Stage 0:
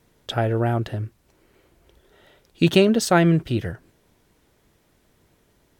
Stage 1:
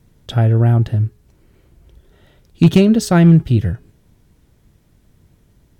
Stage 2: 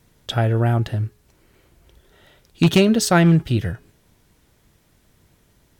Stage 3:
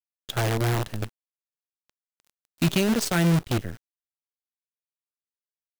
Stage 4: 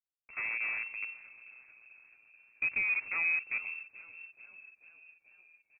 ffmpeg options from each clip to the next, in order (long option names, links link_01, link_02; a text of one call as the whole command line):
ffmpeg -i in.wav -af "bass=frequency=250:gain=14,treble=frequency=4000:gain=2,bandreject=frequency=418.1:width_type=h:width=4,bandreject=frequency=836.2:width_type=h:width=4,bandreject=frequency=1254.3:width_type=h:width=4,bandreject=frequency=1672.4:width_type=h:width=4,bandreject=frequency=2090.5:width_type=h:width=4,bandreject=frequency=2508.6:width_type=h:width=4,bandreject=frequency=2926.7:width_type=h:width=4,bandreject=frequency=3344.8:width_type=h:width=4,bandreject=frequency=3762.9:width_type=h:width=4,bandreject=frequency=4181:width_type=h:width=4,bandreject=frequency=4599.1:width_type=h:width=4,bandreject=frequency=5017.2:width_type=h:width=4,bandreject=frequency=5435.3:width_type=h:width=4,bandreject=frequency=5853.4:width_type=h:width=4,asoftclip=type=hard:threshold=-1dB,volume=-1dB" out.wav
ffmpeg -i in.wav -af "lowshelf=frequency=390:gain=-11,volume=3.5dB" out.wav
ffmpeg -i in.wav -filter_complex "[0:a]acrossover=split=200|1400|4200[link_01][link_02][link_03][link_04];[link_02]alimiter=limit=-13dB:level=0:latency=1[link_05];[link_01][link_05][link_03][link_04]amix=inputs=4:normalize=0,acrusher=bits=4:dc=4:mix=0:aa=0.000001,volume=-6.5dB" out.wav
ffmpeg -i in.wav -filter_complex "[0:a]equalizer=frequency=125:width_type=o:width=1:gain=-8,equalizer=frequency=1000:width_type=o:width=1:gain=-8,equalizer=frequency=2000:width_type=o:width=1:gain=-9,asplit=7[link_01][link_02][link_03][link_04][link_05][link_06][link_07];[link_02]adelay=437,afreqshift=-86,volume=-17dB[link_08];[link_03]adelay=874,afreqshift=-172,volume=-21dB[link_09];[link_04]adelay=1311,afreqshift=-258,volume=-25dB[link_10];[link_05]adelay=1748,afreqshift=-344,volume=-29dB[link_11];[link_06]adelay=2185,afreqshift=-430,volume=-33.1dB[link_12];[link_07]adelay=2622,afreqshift=-516,volume=-37.1dB[link_13];[link_01][link_08][link_09][link_10][link_11][link_12][link_13]amix=inputs=7:normalize=0,lowpass=frequency=2300:width_type=q:width=0.5098,lowpass=frequency=2300:width_type=q:width=0.6013,lowpass=frequency=2300:width_type=q:width=0.9,lowpass=frequency=2300:width_type=q:width=2.563,afreqshift=-2700,volume=-6dB" out.wav